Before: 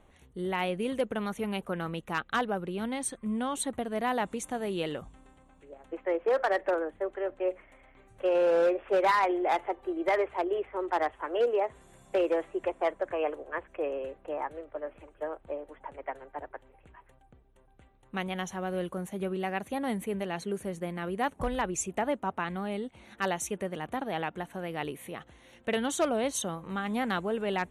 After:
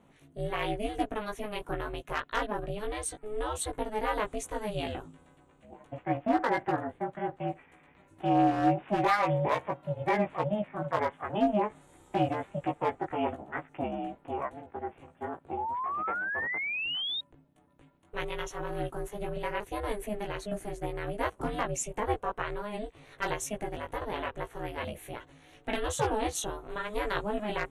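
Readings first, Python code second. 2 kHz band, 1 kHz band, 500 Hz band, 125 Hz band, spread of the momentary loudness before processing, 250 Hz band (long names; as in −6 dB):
+0.5 dB, +1.0 dB, −3.5 dB, +4.0 dB, 12 LU, −0.5 dB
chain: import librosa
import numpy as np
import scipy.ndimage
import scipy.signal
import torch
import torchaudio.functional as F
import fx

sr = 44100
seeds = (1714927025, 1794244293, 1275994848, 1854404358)

y = fx.doubler(x, sr, ms=17.0, db=-3.0)
y = y * np.sin(2.0 * np.pi * 210.0 * np.arange(len(y)) / sr)
y = fx.spec_paint(y, sr, seeds[0], shape='rise', start_s=15.57, length_s=1.64, low_hz=820.0, high_hz=3800.0, level_db=-33.0)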